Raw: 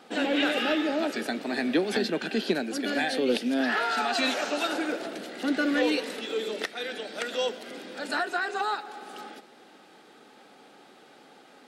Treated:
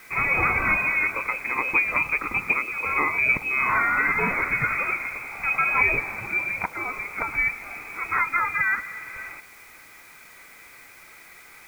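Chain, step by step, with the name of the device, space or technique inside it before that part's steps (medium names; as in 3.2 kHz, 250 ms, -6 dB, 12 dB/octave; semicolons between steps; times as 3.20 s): scrambled radio voice (band-pass 360–3000 Hz; frequency inversion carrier 2.8 kHz; white noise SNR 27 dB); trim +6 dB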